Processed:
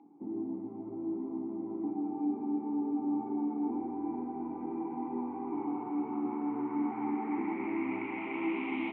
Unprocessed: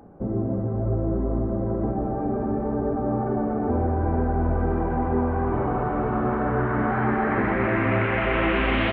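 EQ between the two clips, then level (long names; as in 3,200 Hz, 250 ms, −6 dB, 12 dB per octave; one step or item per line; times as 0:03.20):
formant filter u
high-pass filter 180 Hz 12 dB per octave
0.0 dB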